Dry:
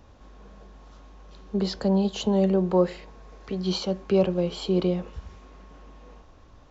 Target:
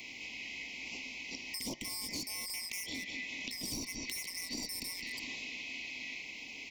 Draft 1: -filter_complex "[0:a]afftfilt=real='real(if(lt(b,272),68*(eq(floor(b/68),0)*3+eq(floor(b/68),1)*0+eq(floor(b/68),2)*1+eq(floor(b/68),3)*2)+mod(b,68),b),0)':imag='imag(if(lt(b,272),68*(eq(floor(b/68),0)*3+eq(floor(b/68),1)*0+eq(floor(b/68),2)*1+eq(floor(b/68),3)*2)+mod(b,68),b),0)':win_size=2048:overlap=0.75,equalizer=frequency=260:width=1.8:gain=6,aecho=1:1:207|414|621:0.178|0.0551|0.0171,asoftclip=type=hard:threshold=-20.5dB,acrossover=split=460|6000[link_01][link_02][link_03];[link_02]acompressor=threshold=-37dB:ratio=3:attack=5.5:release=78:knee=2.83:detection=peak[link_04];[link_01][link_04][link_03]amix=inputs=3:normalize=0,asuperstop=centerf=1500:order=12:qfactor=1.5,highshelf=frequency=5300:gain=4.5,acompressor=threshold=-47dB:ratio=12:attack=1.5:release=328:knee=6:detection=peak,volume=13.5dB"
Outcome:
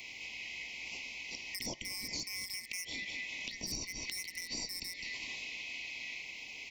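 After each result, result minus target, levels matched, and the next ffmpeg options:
250 Hz band −5.0 dB; hard clipping: distortion −6 dB
-filter_complex "[0:a]afftfilt=real='real(if(lt(b,272),68*(eq(floor(b/68),0)*3+eq(floor(b/68),1)*0+eq(floor(b/68),2)*1+eq(floor(b/68),3)*2)+mod(b,68),b),0)':imag='imag(if(lt(b,272),68*(eq(floor(b/68),0)*3+eq(floor(b/68),1)*0+eq(floor(b/68),2)*1+eq(floor(b/68),3)*2)+mod(b,68),b),0)':win_size=2048:overlap=0.75,equalizer=frequency=260:width=1.8:gain=16.5,aecho=1:1:207|414|621:0.178|0.0551|0.0171,asoftclip=type=hard:threshold=-20.5dB,acrossover=split=460|6000[link_01][link_02][link_03];[link_02]acompressor=threshold=-37dB:ratio=3:attack=5.5:release=78:knee=2.83:detection=peak[link_04];[link_01][link_04][link_03]amix=inputs=3:normalize=0,asuperstop=centerf=1500:order=12:qfactor=1.5,highshelf=frequency=5300:gain=4.5,acompressor=threshold=-47dB:ratio=12:attack=1.5:release=328:knee=6:detection=peak,volume=13.5dB"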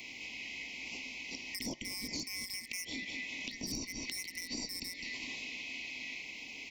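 hard clipping: distortion −6 dB
-filter_complex "[0:a]afftfilt=real='real(if(lt(b,272),68*(eq(floor(b/68),0)*3+eq(floor(b/68),1)*0+eq(floor(b/68),2)*1+eq(floor(b/68),3)*2)+mod(b,68),b),0)':imag='imag(if(lt(b,272),68*(eq(floor(b/68),0)*3+eq(floor(b/68),1)*0+eq(floor(b/68),2)*1+eq(floor(b/68),3)*2)+mod(b,68),b),0)':win_size=2048:overlap=0.75,equalizer=frequency=260:width=1.8:gain=16.5,aecho=1:1:207|414|621:0.178|0.0551|0.0171,asoftclip=type=hard:threshold=-28.5dB,acrossover=split=460|6000[link_01][link_02][link_03];[link_02]acompressor=threshold=-37dB:ratio=3:attack=5.5:release=78:knee=2.83:detection=peak[link_04];[link_01][link_04][link_03]amix=inputs=3:normalize=0,asuperstop=centerf=1500:order=12:qfactor=1.5,highshelf=frequency=5300:gain=4.5,acompressor=threshold=-47dB:ratio=12:attack=1.5:release=328:knee=6:detection=peak,volume=13.5dB"

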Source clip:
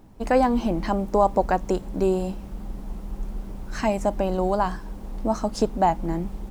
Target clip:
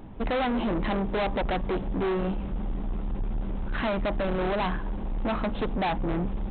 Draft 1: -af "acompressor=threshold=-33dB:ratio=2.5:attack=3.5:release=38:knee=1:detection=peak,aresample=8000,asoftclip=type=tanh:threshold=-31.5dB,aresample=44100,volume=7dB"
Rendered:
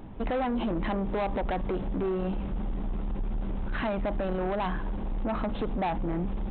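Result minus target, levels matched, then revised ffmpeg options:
downward compressor: peak gain reduction +12.5 dB
-af "aresample=8000,asoftclip=type=tanh:threshold=-31.5dB,aresample=44100,volume=7dB"

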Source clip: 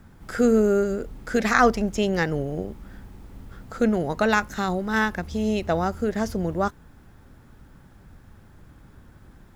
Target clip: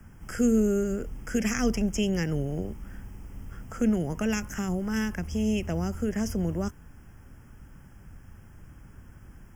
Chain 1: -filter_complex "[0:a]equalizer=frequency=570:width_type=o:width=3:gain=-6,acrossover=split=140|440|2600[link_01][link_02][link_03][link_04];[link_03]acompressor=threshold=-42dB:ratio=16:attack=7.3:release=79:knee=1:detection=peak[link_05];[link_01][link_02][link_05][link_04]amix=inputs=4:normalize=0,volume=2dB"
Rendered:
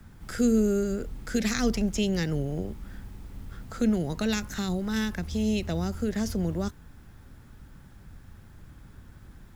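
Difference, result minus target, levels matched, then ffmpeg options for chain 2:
4,000 Hz band +4.0 dB
-filter_complex "[0:a]asuperstop=centerf=4000:order=12:qfactor=2.4,equalizer=frequency=570:width_type=o:width=3:gain=-6,acrossover=split=140|440|2600[link_01][link_02][link_03][link_04];[link_03]acompressor=threshold=-42dB:ratio=16:attack=7.3:release=79:knee=1:detection=peak[link_05];[link_01][link_02][link_05][link_04]amix=inputs=4:normalize=0,volume=2dB"

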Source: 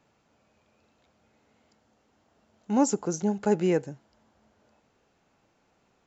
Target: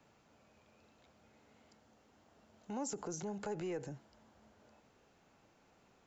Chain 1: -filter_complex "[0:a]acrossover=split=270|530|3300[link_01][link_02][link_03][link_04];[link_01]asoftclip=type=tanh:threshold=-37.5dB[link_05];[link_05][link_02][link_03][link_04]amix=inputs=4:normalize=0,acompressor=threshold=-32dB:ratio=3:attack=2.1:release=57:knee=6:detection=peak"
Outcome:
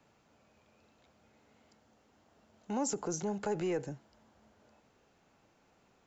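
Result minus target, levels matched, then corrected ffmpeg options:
downward compressor: peak gain reduction −6.5 dB
-filter_complex "[0:a]acrossover=split=270|530|3300[link_01][link_02][link_03][link_04];[link_01]asoftclip=type=tanh:threshold=-37.5dB[link_05];[link_05][link_02][link_03][link_04]amix=inputs=4:normalize=0,acompressor=threshold=-42dB:ratio=3:attack=2.1:release=57:knee=6:detection=peak"

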